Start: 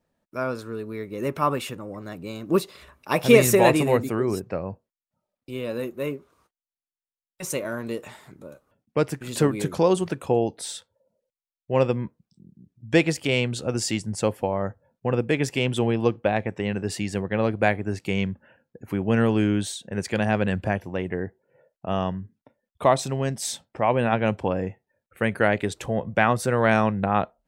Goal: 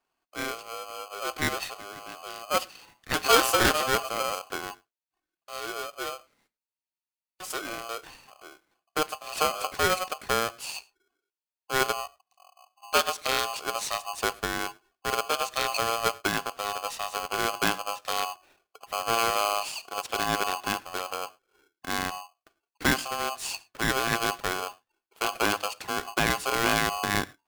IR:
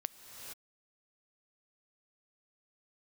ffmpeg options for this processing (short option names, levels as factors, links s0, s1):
-filter_complex "[0:a]equalizer=f=3500:t=o:w=0.23:g=12.5,aeval=exprs='0.841*(cos(1*acos(clip(val(0)/0.841,-1,1)))-cos(1*PI/2))+0.0473*(cos(6*acos(clip(val(0)/0.841,-1,1)))-cos(6*PI/2))':c=same[s0];[1:a]atrim=start_sample=2205,afade=t=out:st=0.16:d=0.01,atrim=end_sample=7497[s1];[s0][s1]afir=irnorm=-1:irlink=0,aeval=exprs='val(0)*sgn(sin(2*PI*920*n/s))':c=same,volume=0.631"